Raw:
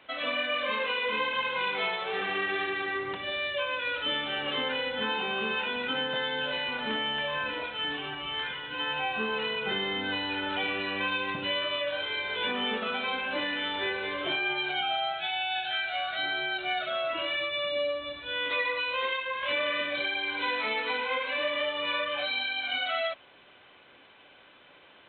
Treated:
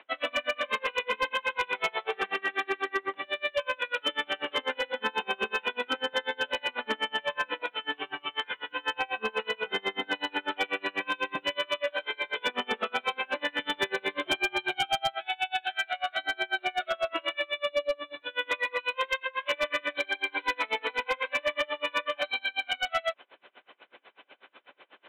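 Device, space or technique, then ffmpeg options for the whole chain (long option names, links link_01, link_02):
helicopter radio: -filter_complex "[0:a]highpass=330,lowpass=3000,aeval=exprs='val(0)*pow(10,-32*(0.5-0.5*cos(2*PI*8.1*n/s))/20)':channel_layout=same,asoftclip=type=hard:threshold=-27.5dB,asettb=1/sr,asplit=3[link_01][link_02][link_03];[link_01]atrim=end=13.594[link_04];[link_02]atrim=start=13.59:end=15.15,asetpts=PTS-STARTPTS,afade=type=in:duration=0.004:curve=qsin,afade=type=out:start_time=1.556:duration=0.004:curve=qsin,bass=frequency=250:gain=11,treble=frequency=4000:gain=9[link_05];[link_03]atrim=start=15.146[link_06];[link_04][link_05]acrossfade=duration=0.004:curve1=hsin:curve2=qsin[link_07];[link_07][link_06]acrossfade=duration=0.004:curve1=qsin:curve2=hsin,volume=7.5dB"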